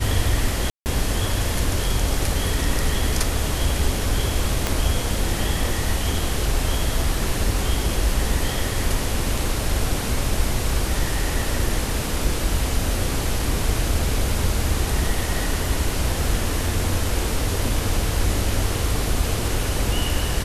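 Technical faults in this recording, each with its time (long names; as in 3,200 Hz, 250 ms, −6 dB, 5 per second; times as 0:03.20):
0:00.70–0:00.86: drop-out 159 ms
0:04.67: click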